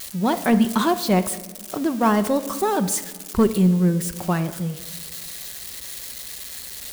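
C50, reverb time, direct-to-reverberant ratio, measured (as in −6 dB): 13.5 dB, 1.5 s, 9.5 dB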